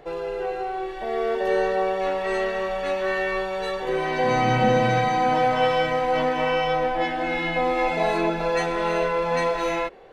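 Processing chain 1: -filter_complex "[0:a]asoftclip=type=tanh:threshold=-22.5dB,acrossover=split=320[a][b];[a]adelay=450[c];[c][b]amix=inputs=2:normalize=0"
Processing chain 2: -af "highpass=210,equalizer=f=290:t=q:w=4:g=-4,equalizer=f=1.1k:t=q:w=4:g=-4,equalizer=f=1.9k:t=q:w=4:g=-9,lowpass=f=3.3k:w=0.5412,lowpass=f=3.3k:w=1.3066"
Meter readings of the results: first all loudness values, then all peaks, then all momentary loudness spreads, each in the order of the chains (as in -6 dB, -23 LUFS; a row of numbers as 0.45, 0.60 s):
-28.0, -25.0 LUFS; -15.5, -10.5 dBFS; 5, 8 LU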